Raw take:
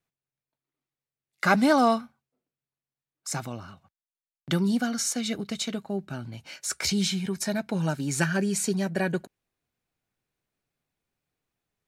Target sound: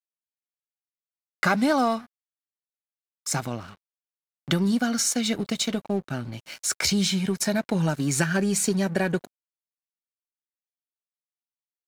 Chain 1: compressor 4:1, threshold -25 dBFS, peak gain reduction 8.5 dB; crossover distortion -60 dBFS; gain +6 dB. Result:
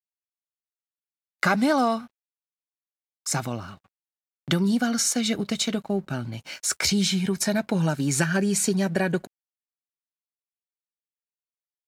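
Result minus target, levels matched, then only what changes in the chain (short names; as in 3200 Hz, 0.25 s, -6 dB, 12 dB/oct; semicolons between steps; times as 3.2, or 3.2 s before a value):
crossover distortion: distortion -11 dB
change: crossover distortion -48.5 dBFS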